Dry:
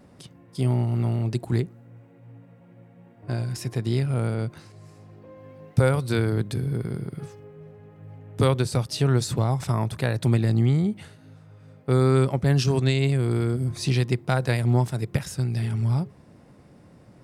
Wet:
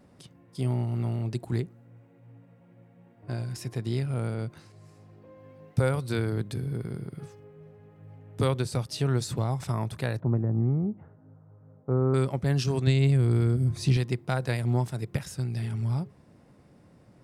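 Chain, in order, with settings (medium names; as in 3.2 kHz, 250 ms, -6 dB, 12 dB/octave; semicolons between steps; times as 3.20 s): 10.20–12.14 s: low-pass 1.2 kHz 24 dB/octave; 12.87–13.97 s: bass shelf 170 Hz +10 dB; trim -5 dB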